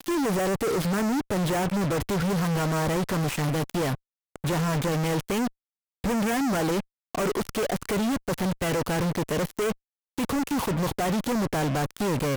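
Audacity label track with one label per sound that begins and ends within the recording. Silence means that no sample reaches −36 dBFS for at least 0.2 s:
4.360000	5.480000	sound
6.040000	6.800000	sound
7.150000	9.720000	sound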